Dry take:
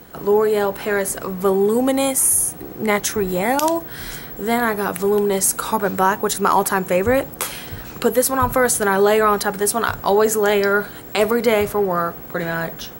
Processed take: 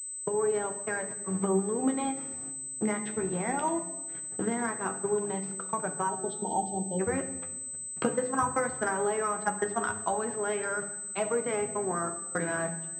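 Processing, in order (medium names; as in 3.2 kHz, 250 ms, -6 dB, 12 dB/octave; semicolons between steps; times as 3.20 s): recorder AGC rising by 17 dB/s; dynamic bell 530 Hz, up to -6 dB, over -33 dBFS, Q 4.3; gate -19 dBFS, range -47 dB; 6.09–7.00 s: spectral selection erased 930–3000 Hz; compression 6:1, threshold -22 dBFS, peak gain reduction 10 dB; distance through air 260 m; 7.12–9.79 s: transient shaper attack +5 dB, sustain -3 dB; reverberation RT60 1.1 s, pre-delay 6 ms, DRR 7.5 dB; flange 0.18 Hz, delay 5.7 ms, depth 8.8 ms, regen +36%; high-pass 94 Hz 12 dB/octave; hum notches 50/100/150/200/250/300/350/400/450/500 Hz; class-D stage that switches slowly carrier 8.1 kHz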